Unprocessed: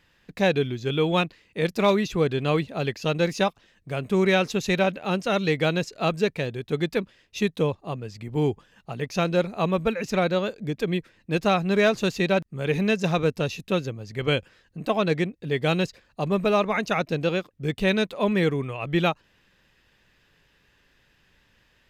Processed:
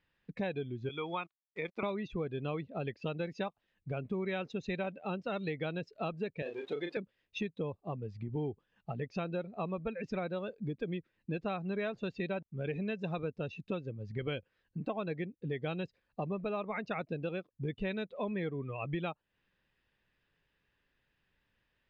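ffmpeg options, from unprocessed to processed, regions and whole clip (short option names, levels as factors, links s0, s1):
-filter_complex "[0:a]asettb=1/sr,asplit=3[s0][s1][s2];[s0]atrim=end=0.894[s3];[s1]atrim=start=0.89:end=1.83,asetpts=PTS-STARTPTS,afade=t=in:d=0.004:c=qsin,afade=t=out:st=0.936:d=0.004:c=qsin,acrossover=split=410 3100:gain=0.178 1 0.2[s4][s5][s6];[s4][s5][s6]amix=inputs=3:normalize=0,aecho=1:1:0.9:0.47,atrim=end_sample=41454,aeval=exprs='val(0)*gte(abs(val(0)),0.00631)':c=same[s7];[s2]atrim=start=1.826[s8];[s3][s7]acrossfade=d=0.004:c1=hsin:c2=qsin[s9];[s9][s8]acrossfade=d=0.004:c1=qsin:c2=hsin,asettb=1/sr,asplit=3[s10][s11][s12];[s10]atrim=end=6.424[s13];[s11]atrim=start=6.42:end=6.97,asetpts=PTS-STARTPTS,afade=t=in:d=0.004:c=qsin,afade=t=out:st=0.546:d=0.004:c=qsin,aeval=exprs='val(0)+0.5*0.0211*sgn(val(0))':c=same,highpass=400,asplit=2[s14][s15];[s15]adelay=35,volume=0.596[s16];[s14][s16]amix=inputs=2:normalize=0,atrim=end_sample=24255[s17];[s12]atrim=start=6.966[s18];[s13][s17]acrossfade=d=0.004:c1=hsin:c2=qsin[s19];[s19][s18]acrossfade=d=0.004:c1=qsin:c2=hsin,afftdn=nr=15:nf=-32,lowpass=3800,acompressor=threshold=0.0158:ratio=4"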